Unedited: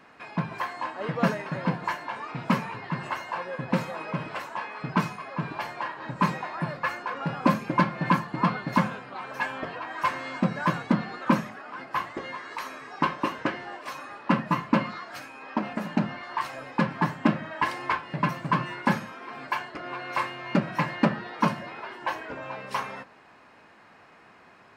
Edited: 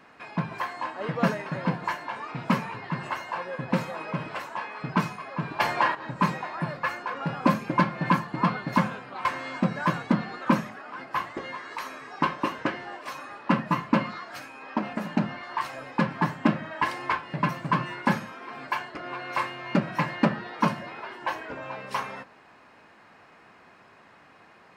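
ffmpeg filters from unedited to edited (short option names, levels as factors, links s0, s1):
-filter_complex "[0:a]asplit=4[s0][s1][s2][s3];[s0]atrim=end=5.602[s4];[s1]atrim=start=5.598:end=5.952,asetpts=PTS-STARTPTS,volume=2.99[s5];[s2]atrim=start=5.948:end=9.252[s6];[s3]atrim=start=10.048[s7];[s4][s5]acrossfade=d=0.004:c1=hsin:c2=hsin[s8];[s8][s6]acrossfade=d=0.004:c1=hsin:c2=hsin[s9];[s9][s7]acrossfade=d=0.004:c1=hsin:c2=hsin"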